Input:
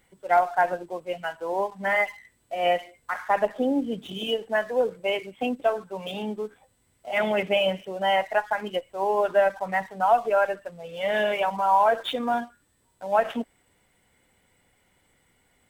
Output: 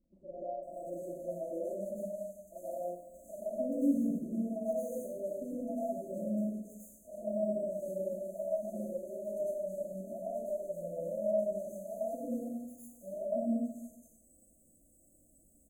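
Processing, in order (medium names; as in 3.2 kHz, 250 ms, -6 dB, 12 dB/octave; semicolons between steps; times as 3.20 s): hum notches 60/120/180/240 Hz; compression, threshold -31 dBFS, peak gain reduction 15.5 dB; brick-wall FIR band-stop 680–6200 Hz; static phaser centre 430 Hz, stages 6; three bands offset in time lows, mids, highs 40/630 ms, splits 480/3400 Hz; plate-style reverb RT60 1 s, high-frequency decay 0.65×, pre-delay 85 ms, DRR -9 dB; trim -3.5 dB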